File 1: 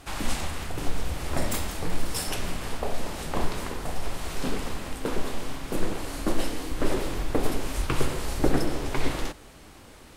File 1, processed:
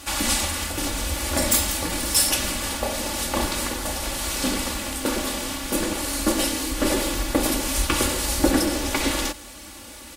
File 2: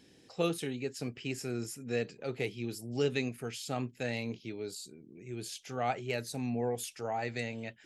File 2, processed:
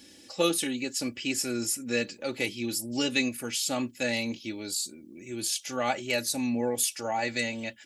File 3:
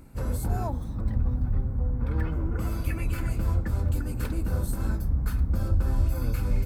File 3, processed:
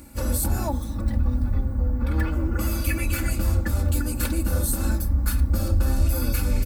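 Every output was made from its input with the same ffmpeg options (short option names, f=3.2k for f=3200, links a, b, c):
-af "highpass=42,highshelf=f=3.1k:g=11,aecho=1:1:3.5:0.73,asoftclip=type=tanh:threshold=-9dB,volume=3dB"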